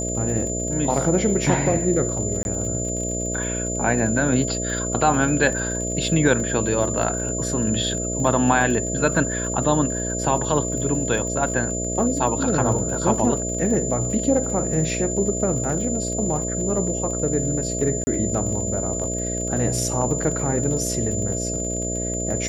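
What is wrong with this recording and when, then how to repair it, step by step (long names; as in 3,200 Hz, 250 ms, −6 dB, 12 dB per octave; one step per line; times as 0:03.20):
mains buzz 60 Hz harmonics 11 −28 dBFS
surface crackle 48 per second −30 dBFS
whistle 7,100 Hz −27 dBFS
0:02.43–0:02.45: drop-out 21 ms
0:18.04–0:18.07: drop-out 30 ms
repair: click removal
notch filter 7,100 Hz, Q 30
hum removal 60 Hz, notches 11
repair the gap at 0:02.43, 21 ms
repair the gap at 0:18.04, 30 ms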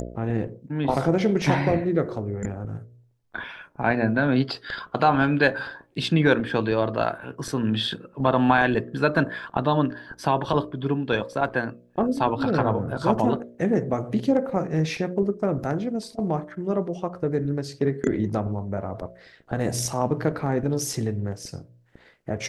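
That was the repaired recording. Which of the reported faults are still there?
none of them is left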